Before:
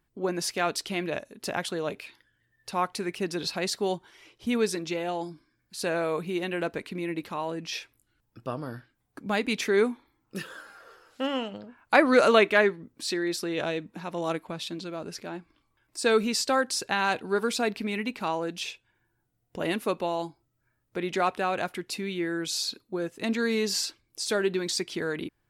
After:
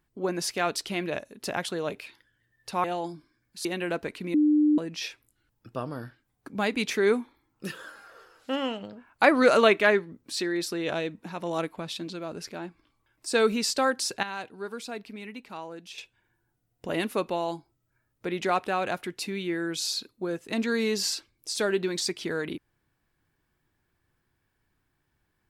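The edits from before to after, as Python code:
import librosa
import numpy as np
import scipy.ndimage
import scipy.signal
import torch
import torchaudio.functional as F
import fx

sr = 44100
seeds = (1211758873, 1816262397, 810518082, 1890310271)

y = fx.edit(x, sr, fx.cut(start_s=2.84, length_s=2.17),
    fx.cut(start_s=5.82, length_s=0.54),
    fx.bleep(start_s=7.05, length_s=0.44, hz=300.0, db=-17.5),
    fx.clip_gain(start_s=16.94, length_s=1.75, db=-10.0), tone=tone)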